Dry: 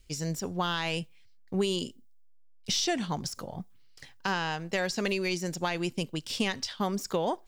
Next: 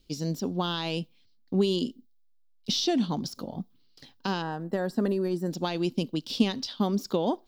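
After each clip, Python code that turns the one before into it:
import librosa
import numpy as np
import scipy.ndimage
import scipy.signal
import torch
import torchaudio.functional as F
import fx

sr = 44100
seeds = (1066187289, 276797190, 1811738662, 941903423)

y = fx.graphic_eq_10(x, sr, hz=(250, 2000, 4000, 8000), db=(11, -10, 8, -11))
y = fx.spec_box(y, sr, start_s=4.42, length_s=1.09, low_hz=2000.0, high_hz=7300.0, gain_db=-15)
y = fx.low_shelf(y, sr, hz=120.0, db=-7.5)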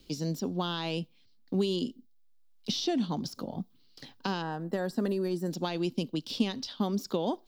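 y = fx.band_squash(x, sr, depth_pct=40)
y = y * 10.0 ** (-3.0 / 20.0)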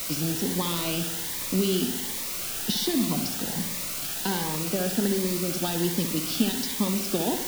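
y = fx.quant_dither(x, sr, seeds[0], bits=6, dither='triangular')
y = fx.echo_bbd(y, sr, ms=64, stages=2048, feedback_pct=66, wet_db=-9)
y = fx.notch_cascade(y, sr, direction='rising', hz=1.3)
y = y * 10.0 ** (4.0 / 20.0)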